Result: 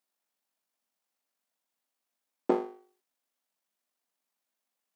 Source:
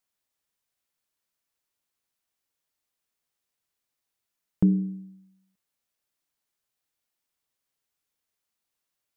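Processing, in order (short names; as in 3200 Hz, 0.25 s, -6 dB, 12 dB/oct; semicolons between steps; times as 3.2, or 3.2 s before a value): full-wave rectifier; granular stretch 0.54×, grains 41 ms; rippled Chebyshev high-pass 180 Hz, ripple 6 dB; gain +8.5 dB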